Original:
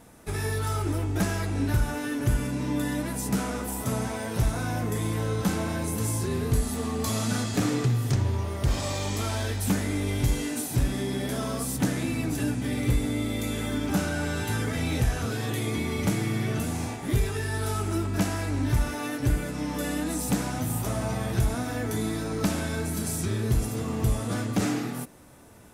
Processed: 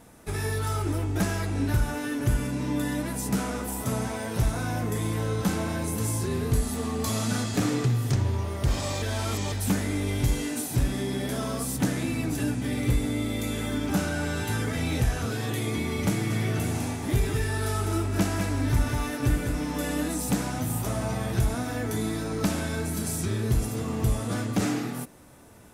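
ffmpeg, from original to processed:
ffmpeg -i in.wav -filter_complex "[0:a]asettb=1/sr,asplit=3[link_01][link_02][link_03];[link_01]atrim=end=16.104[link_04];[link_02]atrim=start=16.1:end=20.08,asetpts=PTS-STARTPTS,afade=type=in:duration=0.004:curve=qsin,afade=type=out:start_time=3.976:duration=0.004:curve=qsin,aecho=1:1:202:0.501,atrim=end_sample=175518[link_05];[link_03]atrim=start=20.076[link_06];[link_04][link_05]acrossfade=duration=0.004:curve1=hsin:curve2=qsin[link_07];[link_07][link_06]acrossfade=duration=0.004:curve1=qsin:curve2=hsin,asplit=3[link_08][link_09][link_10];[link_08]atrim=end=9.022[link_11];[link_09]atrim=start=9.018:end=9.522,asetpts=PTS-STARTPTS,areverse[link_12];[link_10]atrim=start=9.518[link_13];[link_11][link_12]acrossfade=duration=0.004:curve1=hsin:curve2=hsin[link_14];[link_14][link_13]acrossfade=duration=0.004:curve1=hsin:curve2=hsin" out.wav

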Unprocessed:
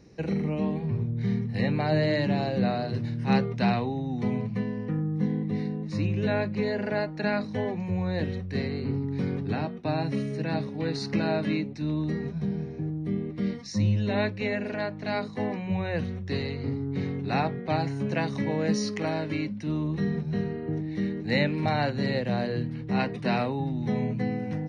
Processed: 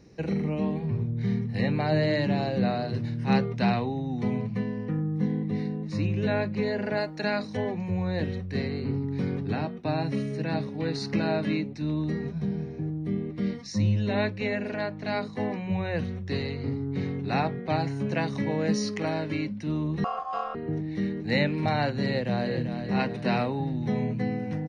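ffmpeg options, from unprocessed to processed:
ffmpeg -i in.wav -filter_complex "[0:a]asettb=1/sr,asplit=3[link_01][link_02][link_03];[link_01]atrim=end=6.974[link_04];[link_02]atrim=start=6.97:end=7.57,asetpts=PTS-STARTPTS,afade=type=in:duration=0.004:curve=qsin,afade=type=out:start_time=0.596:duration=0.004:curve=qsin,bass=frequency=250:gain=-4,treble=frequency=4000:gain=8[link_05];[link_03]atrim=start=7.566[link_06];[link_04][link_05]acrossfade=duration=0.004:curve1=hsin:curve2=qsin[link_07];[link_07][link_06]acrossfade=duration=0.004:curve1=qsin:curve2=hsin,asettb=1/sr,asplit=3[link_08][link_09][link_10];[link_08]atrim=end=20.044[link_11];[link_09]atrim=start=20.04:end=20.55,asetpts=PTS-STARTPTS,afade=type=in:duration=0.004:curve=qsin,afade=type=out:start_time=0.506:duration=0.004:curve=qsin,aeval=exprs='val(0)*sin(2*PI*920*n/s)':channel_layout=same[link_12];[link_10]atrim=start=20.546[link_13];[link_11][link_12]acrossfade=duration=0.004:curve1=hsin:curve2=qsin[link_14];[link_14][link_13]acrossfade=duration=0.004:curve1=qsin:curve2=hsin,asplit=2[link_15][link_16];[link_16]afade=type=in:start_time=22.06:duration=0.01,afade=type=out:start_time=22.76:duration=0.01,aecho=0:1:390|780|1170|1560|1950:0.398107|0.179148|0.0806167|0.0362775|0.0163249[link_17];[link_15][link_17]amix=inputs=2:normalize=0" out.wav

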